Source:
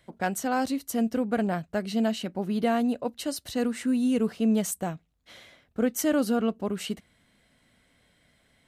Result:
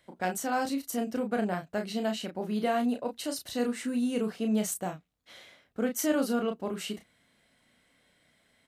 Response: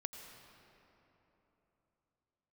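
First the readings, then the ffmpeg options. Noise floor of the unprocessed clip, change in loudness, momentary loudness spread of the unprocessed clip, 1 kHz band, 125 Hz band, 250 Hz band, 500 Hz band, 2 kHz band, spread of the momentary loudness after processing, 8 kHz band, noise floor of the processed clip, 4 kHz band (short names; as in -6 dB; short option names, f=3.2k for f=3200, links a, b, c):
-67 dBFS, -3.5 dB, 9 LU, -1.5 dB, -5.0 dB, -4.5 dB, -2.5 dB, -2.0 dB, 8 LU, -1.5 dB, -69 dBFS, -1.5 dB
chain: -filter_complex "[0:a]lowshelf=f=150:g=-9.5,asplit=2[a][b];[b]adelay=33,volume=-5.5dB[c];[a][c]amix=inputs=2:normalize=0,volume=-2.5dB"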